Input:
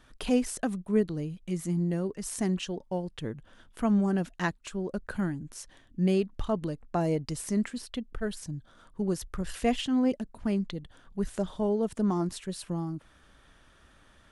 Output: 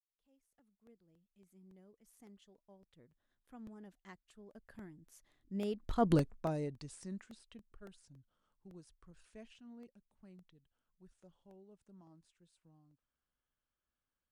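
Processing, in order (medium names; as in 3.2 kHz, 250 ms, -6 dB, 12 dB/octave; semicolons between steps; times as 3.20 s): fade-in on the opening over 1.94 s; Doppler pass-by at 6.14 s, 27 m/s, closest 1.8 m; crackling interface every 0.28 s, samples 64, repeat, from 0.59 s; trim +5.5 dB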